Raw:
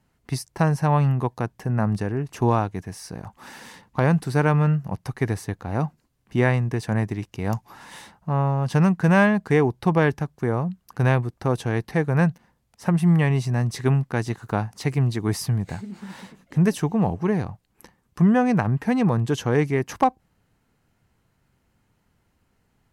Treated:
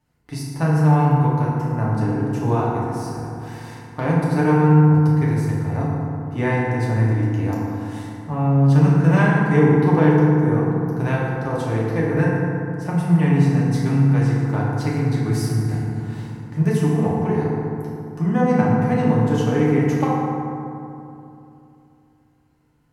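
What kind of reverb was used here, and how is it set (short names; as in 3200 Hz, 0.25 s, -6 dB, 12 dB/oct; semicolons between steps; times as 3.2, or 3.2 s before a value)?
FDN reverb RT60 2.8 s, low-frequency decay 1.25×, high-frequency decay 0.4×, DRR -6.5 dB; gain -6.5 dB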